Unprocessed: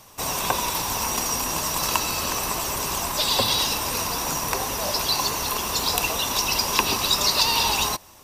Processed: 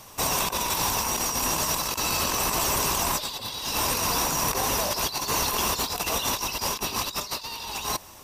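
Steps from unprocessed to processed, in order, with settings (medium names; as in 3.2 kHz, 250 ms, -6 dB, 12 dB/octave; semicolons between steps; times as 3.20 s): compressor with a negative ratio -27 dBFS, ratio -0.5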